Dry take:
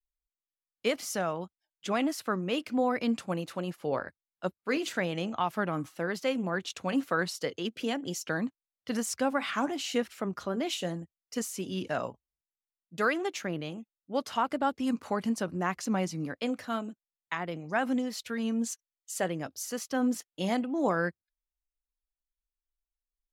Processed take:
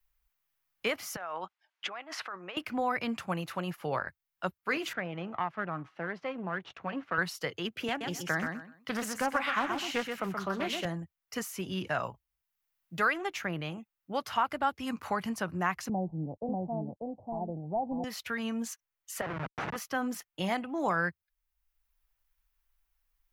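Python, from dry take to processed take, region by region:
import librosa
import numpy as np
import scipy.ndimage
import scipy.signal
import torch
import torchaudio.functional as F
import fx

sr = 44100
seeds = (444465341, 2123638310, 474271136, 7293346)

y = fx.chain(x, sr, fx.over_compress(threshold_db=-39.0, ratio=-1.0),
    fx.bandpass_edges(low_hz=500.0, high_hz=4500.0), at=(1.16, 2.57))
y = fx.chain(y, sr, fx.halfwave_gain(db=-7.0),
    fx.highpass(hz=180.0, slope=12),
    fx.spacing_loss(db_at_10k=33), at=(4.93, 7.18))
y = fx.chain(y, sr, fx.highpass(hz=100.0, slope=24),
    fx.echo_feedback(ms=126, feedback_pct=21, wet_db=-6),
    fx.doppler_dist(depth_ms=0.19), at=(7.88, 10.85))
y = fx.chain(y, sr, fx.cvsd(bps=64000),
    fx.steep_lowpass(hz=840.0, slope=72),
    fx.echo_single(ms=591, db=-3.5), at=(15.89, 18.04))
y = fx.chain(y, sr, fx.schmitt(flips_db=-34.5),
    fx.bandpass_edges(low_hz=160.0, high_hz=2300.0), at=(19.21, 19.76))
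y = fx.graphic_eq(y, sr, hz=(250, 500, 4000, 8000), db=(-11, -8, -6, -10))
y = fx.band_squash(y, sr, depth_pct=40)
y = y * librosa.db_to_amplitude(5.5)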